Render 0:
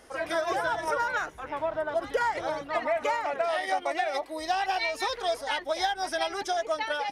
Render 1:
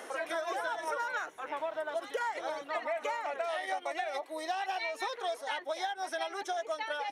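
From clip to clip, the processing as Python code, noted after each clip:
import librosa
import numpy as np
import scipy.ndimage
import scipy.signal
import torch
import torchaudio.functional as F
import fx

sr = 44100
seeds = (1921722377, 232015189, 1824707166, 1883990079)

y = scipy.signal.sosfilt(scipy.signal.butter(2, 340.0, 'highpass', fs=sr, output='sos'), x)
y = fx.notch(y, sr, hz=4900.0, q=6.5)
y = fx.band_squash(y, sr, depth_pct=70)
y = y * 10.0 ** (-6.5 / 20.0)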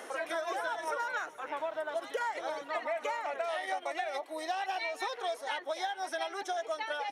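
y = x + 10.0 ** (-21.0 / 20.0) * np.pad(x, (int(427 * sr / 1000.0), 0))[:len(x)]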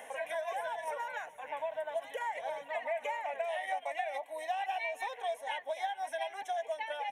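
y = fx.fixed_phaser(x, sr, hz=1300.0, stages=6)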